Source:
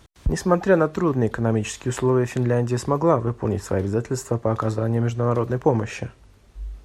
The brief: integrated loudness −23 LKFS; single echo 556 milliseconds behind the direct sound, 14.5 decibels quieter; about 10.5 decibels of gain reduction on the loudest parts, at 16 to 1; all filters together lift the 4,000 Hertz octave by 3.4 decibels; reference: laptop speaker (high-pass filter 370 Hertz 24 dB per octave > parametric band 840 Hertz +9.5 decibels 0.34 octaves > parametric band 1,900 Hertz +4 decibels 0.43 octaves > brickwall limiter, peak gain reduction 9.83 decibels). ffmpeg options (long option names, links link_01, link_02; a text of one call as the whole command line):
ffmpeg -i in.wav -af "equalizer=frequency=4000:width_type=o:gain=4.5,acompressor=threshold=-22dB:ratio=16,highpass=frequency=370:width=0.5412,highpass=frequency=370:width=1.3066,equalizer=frequency=840:width_type=o:width=0.34:gain=9.5,equalizer=frequency=1900:width_type=o:width=0.43:gain=4,aecho=1:1:556:0.188,volume=9.5dB,alimiter=limit=-10.5dB:level=0:latency=1" out.wav